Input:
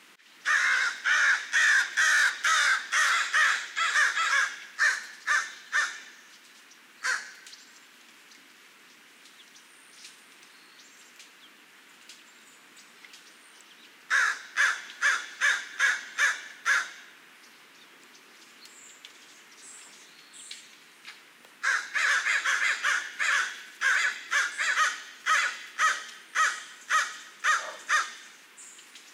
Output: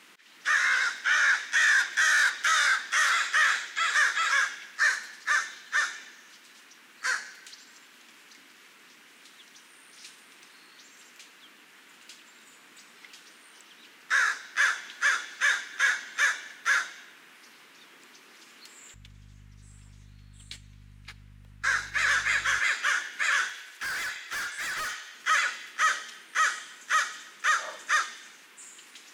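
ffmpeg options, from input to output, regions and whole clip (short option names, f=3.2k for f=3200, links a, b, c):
-filter_complex "[0:a]asettb=1/sr,asplit=3[a][b][c];[a]atrim=end=18.944[d];[b]atrim=start=18.94:end=22.59,asetpts=PTS-STARTPTS,afade=t=in:d=0.004:c=qsin,afade=t=out:st=3.646:d=0.004:c=qsin,agate=range=-13dB:threshold=-45dB:ratio=16:release=100:detection=peak,aeval=exprs='val(0)+0.00178*(sin(2*PI*50*n/s)+sin(2*PI*2*50*n/s)/2+sin(2*PI*3*50*n/s)/3+sin(2*PI*4*50*n/s)/4+sin(2*PI*5*50*n/s)/5)':c=same,equalizer=f=97:w=0.78:g=9[e];[c]atrim=start=22.586[f];[d][e]acrossfade=d=0.004:c1=hsin:c2=qsin[g];[g][f]acrossfade=d=0.004:c1=qsin:c2=hsin,asettb=1/sr,asplit=3[h][i][j];[h]atrim=end=23.484[k];[i]atrim=start=23.48:end=25.15,asetpts=PTS-STARTPTS,afade=t=in:d=0.004:c=qsin,afade=t=out:st=1.666:d=0.004:c=qsin,highpass=460,asoftclip=type=hard:threshold=-31dB[l];[j]atrim=start=25.146[m];[k][l]acrossfade=d=0.004:c1=hsin:c2=qsin[n];[n][m]acrossfade=d=0.004:c1=qsin:c2=hsin"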